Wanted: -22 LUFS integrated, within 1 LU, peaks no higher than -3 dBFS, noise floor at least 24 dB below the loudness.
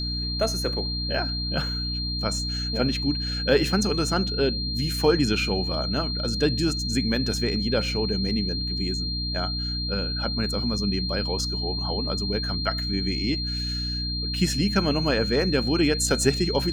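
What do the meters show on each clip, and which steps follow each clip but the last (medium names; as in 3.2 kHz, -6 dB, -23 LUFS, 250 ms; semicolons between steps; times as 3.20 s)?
hum 60 Hz; highest harmonic 300 Hz; hum level -28 dBFS; steady tone 4.2 kHz; tone level -29 dBFS; loudness -24.5 LUFS; peak level -7.0 dBFS; loudness target -22.0 LUFS
-> hum notches 60/120/180/240/300 Hz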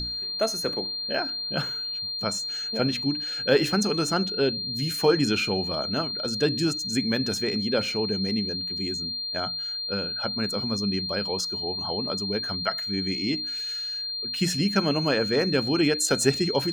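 hum not found; steady tone 4.2 kHz; tone level -29 dBFS
-> band-stop 4.2 kHz, Q 30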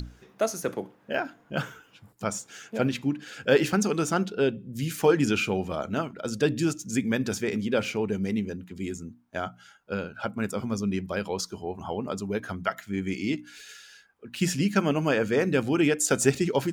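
steady tone not found; loudness -28.0 LUFS; peak level -7.5 dBFS; loudness target -22.0 LUFS
-> trim +6 dB; peak limiter -3 dBFS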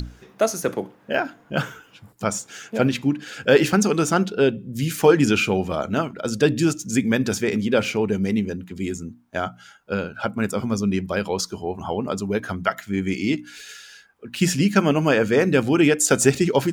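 loudness -22.0 LUFS; peak level -3.0 dBFS; noise floor -54 dBFS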